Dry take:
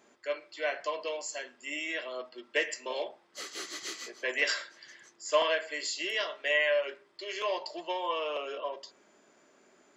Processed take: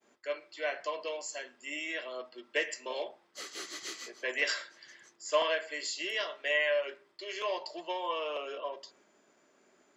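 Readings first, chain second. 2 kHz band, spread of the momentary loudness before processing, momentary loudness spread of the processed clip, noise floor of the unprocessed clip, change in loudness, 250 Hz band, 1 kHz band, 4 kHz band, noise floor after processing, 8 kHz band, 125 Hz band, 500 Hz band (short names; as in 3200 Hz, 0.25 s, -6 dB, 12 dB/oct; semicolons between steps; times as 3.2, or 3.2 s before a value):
-2.0 dB, 13 LU, 13 LU, -65 dBFS, -2.0 dB, -2.0 dB, -2.0 dB, -2.0 dB, -68 dBFS, -2.0 dB, n/a, -2.0 dB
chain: expander -60 dBFS; gain -2 dB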